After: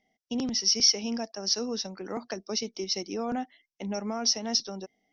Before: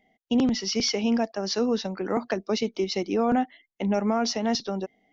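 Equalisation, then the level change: synth low-pass 5600 Hz, resonance Q 7; -8.5 dB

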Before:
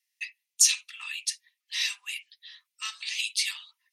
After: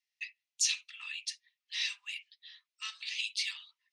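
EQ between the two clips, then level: BPF 680–4500 Hz; high shelf 2100 Hz +7.5 dB; -9.0 dB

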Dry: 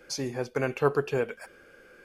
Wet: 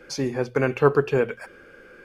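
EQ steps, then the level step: bell 690 Hz -4 dB 0.69 oct; high shelf 4000 Hz -10.5 dB; notches 60/120 Hz; +7.5 dB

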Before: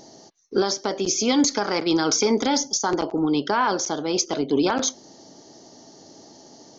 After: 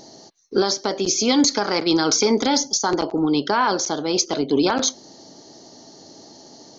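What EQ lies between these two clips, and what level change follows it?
bell 4200 Hz +6.5 dB 0.23 oct; +2.0 dB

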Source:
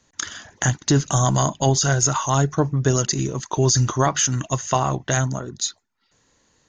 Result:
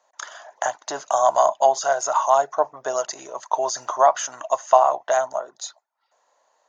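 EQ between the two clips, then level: resonant high-pass 630 Hz, resonance Q 4.9; bell 960 Hz +12.5 dB 1.4 oct; high shelf 6100 Hz +4.5 dB; -11.5 dB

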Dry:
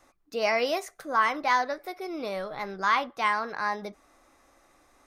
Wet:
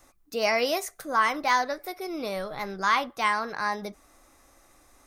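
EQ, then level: low shelf 150 Hz +8 dB; high shelf 6300 Hz +12 dB; 0.0 dB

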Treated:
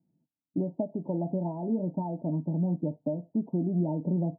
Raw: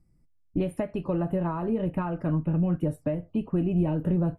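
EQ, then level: HPF 150 Hz 24 dB/oct; rippled Chebyshev low-pass 940 Hz, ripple 6 dB; 0.0 dB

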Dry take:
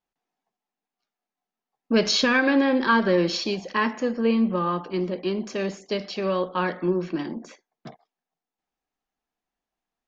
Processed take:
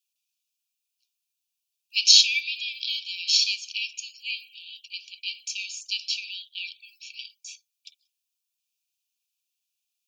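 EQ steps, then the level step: brick-wall FIR high-pass 2300 Hz; high shelf 4000 Hz +10 dB; +3.5 dB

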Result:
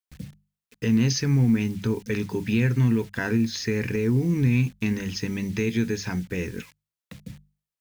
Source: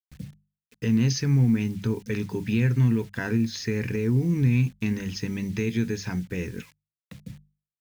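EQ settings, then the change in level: bell 130 Hz -3.5 dB 1.4 oct; +3.0 dB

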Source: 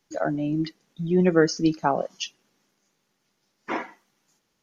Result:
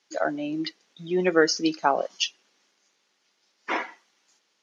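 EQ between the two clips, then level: BPF 330–5100 Hz; high shelf 2100 Hz +10 dB; 0.0 dB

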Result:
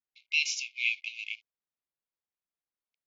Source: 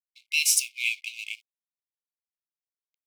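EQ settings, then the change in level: brick-wall FIR low-pass 7300 Hz; air absorption 91 m; high shelf 3500 Hz -8 dB; +2.5 dB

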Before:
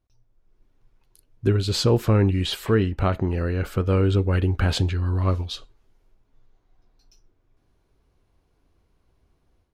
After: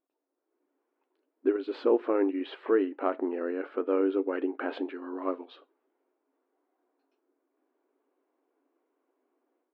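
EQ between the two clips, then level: brick-wall FIR high-pass 250 Hz; air absorption 490 m; tape spacing loss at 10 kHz 21 dB; 0.0 dB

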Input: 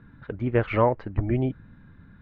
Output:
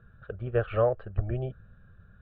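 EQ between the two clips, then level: air absorption 310 m; bell 150 Hz -4 dB 0.88 oct; fixed phaser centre 1400 Hz, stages 8; 0.0 dB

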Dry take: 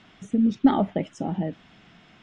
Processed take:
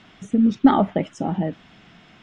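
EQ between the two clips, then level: dynamic EQ 1200 Hz, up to +5 dB, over -41 dBFS, Q 1.4; +3.5 dB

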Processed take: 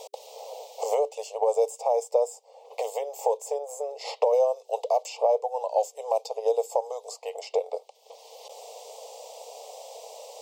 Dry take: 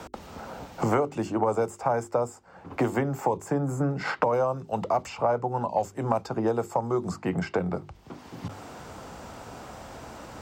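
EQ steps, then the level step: brick-wall FIR high-pass 430 Hz; Butterworth band-stop 1500 Hz, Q 0.59; +5.0 dB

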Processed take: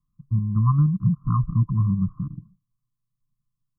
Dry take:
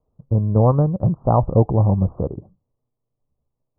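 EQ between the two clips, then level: brick-wall FIR band-stop 300–1000 Hz; fixed phaser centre 380 Hz, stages 8; 0.0 dB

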